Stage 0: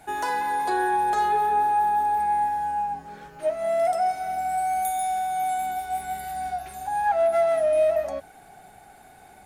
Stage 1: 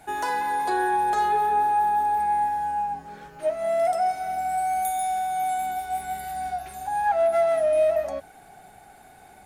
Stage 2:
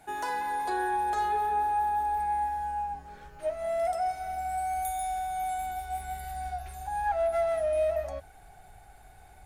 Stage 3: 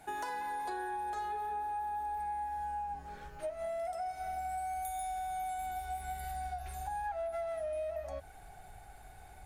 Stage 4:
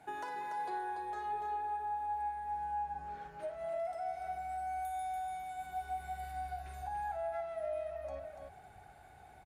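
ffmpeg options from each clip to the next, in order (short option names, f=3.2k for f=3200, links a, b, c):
-af anull
-af "asubboost=boost=10.5:cutoff=68,volume=-5.5dB"
-af "acompressor=threshold=-36dB:ratio=6"
-af "highpass=82,highshelf=f=4.9k:g=-11,aecho=1:1:55.39|288.6:0.251|0.501,volume=-2dB"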